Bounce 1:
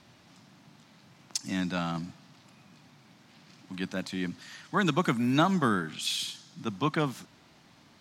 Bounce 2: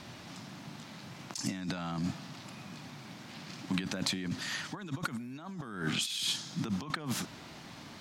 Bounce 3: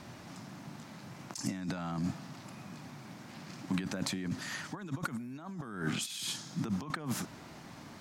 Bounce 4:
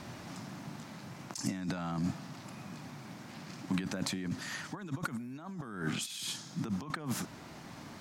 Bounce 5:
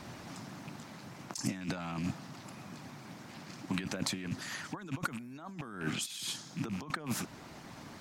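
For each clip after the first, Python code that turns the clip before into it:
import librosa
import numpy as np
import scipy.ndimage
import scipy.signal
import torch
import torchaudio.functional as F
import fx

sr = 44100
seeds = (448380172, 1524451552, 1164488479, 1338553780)

y1 = fx.over_compress(x, sr, threshold_db=-39.0, ratio=-1.0)
y1 = F.gain(torch.from_numpy(y1), 2.0).numpy()
y2 = fx.peak_eq(y1, sr, hz=3500.0, db=-7.0, octaves=1.3)
y3 = fx.rider(y2, sr, range_db=3, speed_s=2.0)
y4 = fx.rattle_buzz(y3, sr, strikes_db=-39.0, level_db=-37.0)
y4 = fx.hpss(y4, sr, part='harmonic', gain_db=-6)
y4 = F.gain(torch.from_numpy(y4), 2.0).numpy()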